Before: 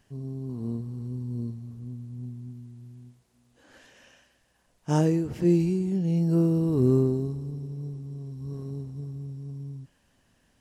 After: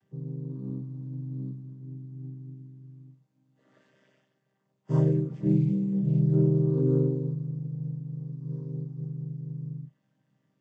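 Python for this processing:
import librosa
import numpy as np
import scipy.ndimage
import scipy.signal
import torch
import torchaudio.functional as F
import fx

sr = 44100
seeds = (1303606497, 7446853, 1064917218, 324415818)

y = fx.chord_vocoder(x, sr, chord='minor triad', root=48)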